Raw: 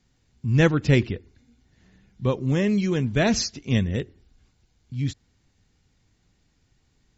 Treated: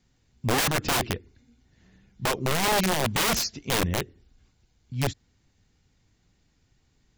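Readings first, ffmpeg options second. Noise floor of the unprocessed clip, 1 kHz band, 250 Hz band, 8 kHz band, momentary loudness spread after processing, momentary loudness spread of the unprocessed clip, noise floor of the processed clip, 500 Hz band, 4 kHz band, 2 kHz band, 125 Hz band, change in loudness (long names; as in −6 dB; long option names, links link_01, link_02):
−67 dBFS, +8.0 dB, −8.0 dB, can't be measured, 10 LU, 13 LU, −68 dBFS, −3.5 dB, +5.0 dB, +1.5 dB, −8.0 dB, −2.5 dB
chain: -af "aeval=exprs='(mod(8.41*val(0)+1,2)-1)/8.41':channel_layout=same,aeval=exprs='0.126*(cos(1*acos(clip(val(0)/0.126,-1,1)))-cos(1*PI/2))+0.00447*(cos(3*acos(clip(val(0)/0.126,-1,1)))-cos(3*PI/2))+0.000891*(cos(6*acos(clip(val(0)/0.126,-1,1)))-cos(6*PI/2))':channel_layout=same"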